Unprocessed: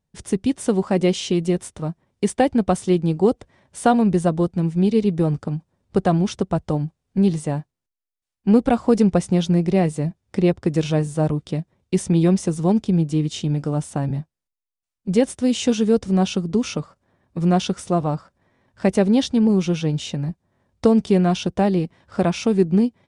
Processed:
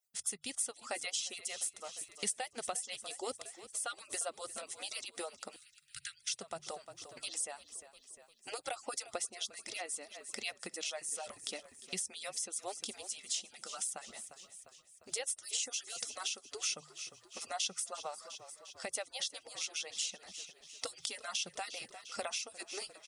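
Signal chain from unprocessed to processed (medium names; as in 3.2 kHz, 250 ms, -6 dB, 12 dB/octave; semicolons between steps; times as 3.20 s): harmonic-percussive separation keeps percussive; differentiator; hum notches 50/100/150 Hz; comb 1.5 ms, depth 39%; frequency-shifting echo 351 ms, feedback 54%, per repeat -33 Hz, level -18.5 dB; compression 3:1, threshold -48 dBFS, peak gain reduction 16 dB; 5.56–6.34 s: Chebyshev band-stop 140–1500 Hz, order 5; random flutter of the level, depth 55%; trim +12 dB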